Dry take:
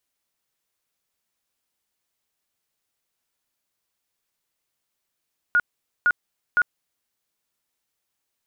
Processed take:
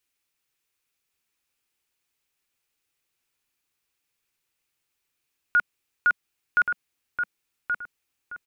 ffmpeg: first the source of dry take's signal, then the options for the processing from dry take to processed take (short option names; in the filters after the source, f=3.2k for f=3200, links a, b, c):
-f lavfi -i "aevalsrc='0.188*sin(2*PI*1440*mod(t,0.51))*lt(mod(t,0.51),69/1440)':d=1.53:s=44100"
-filter_complex "[0:a]equalizer=f=200:t=o:w=0.33:g=-7,equalizer=f=630:t=o:w=0.33:g=-10,equalizer=f=1k:t=o:w=0.33:g=-3,equalizer=f=2.5k:t=o:w=0.33:g=6,asplit=2[a][b];[b]adelay=1127,lowpass=f=1.6k:p=1,volume=-4dB,asplit=2[c][d];[d]adelay=1127,lowpass=f=1.6k:p=1,volume=0.35,asplit=2[e][f];[f]adelay=1127,lowpass=f=1.6k:p=1,volume=0.35,asplit=2[g][h];[h]adelay=1127,lowpass=f=1.6k:p=1,volume=0.35[i];[c][e][g][i]amix=inputs=4:normalize=0[j];[a][j]amix=inputs=2:normalize=0"